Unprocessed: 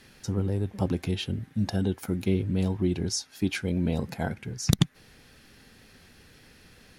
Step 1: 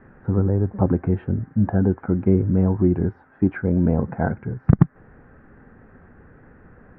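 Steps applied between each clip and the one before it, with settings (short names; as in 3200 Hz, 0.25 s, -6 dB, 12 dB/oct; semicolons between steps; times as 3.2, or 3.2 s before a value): steep low-pass 1600 Hz 36 dB/oct; gain +8 dB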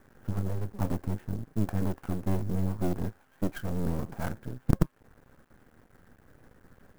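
resonator 540 Hz, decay 0.2 s, harmonics all, mix 50%; half-wave rectifier; clock jitter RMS 0.038 ms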